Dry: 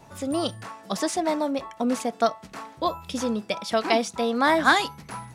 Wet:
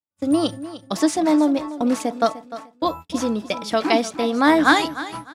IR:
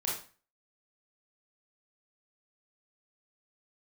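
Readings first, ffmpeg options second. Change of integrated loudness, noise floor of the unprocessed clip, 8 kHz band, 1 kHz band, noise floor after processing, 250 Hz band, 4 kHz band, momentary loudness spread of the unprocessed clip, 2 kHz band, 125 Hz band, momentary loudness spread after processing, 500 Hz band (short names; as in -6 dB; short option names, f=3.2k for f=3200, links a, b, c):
+4.5 dB, -49 dBFS, +2.5 dB, +2.5 dB, -58 dBFS, +8.0 dB, +2.5 dB, 12 LU, +2.5 dB, +2.0 dB, 11 LU, +3.0 dB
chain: -af "agate=range=-57dB:threshold=-35dB:ratio=16:detection=peak,equalizer=f=300:t=o:w=0.24:g=11,aecho=1:1:301|602|903:0.188|0.049|0.0127,volume=2.5dB"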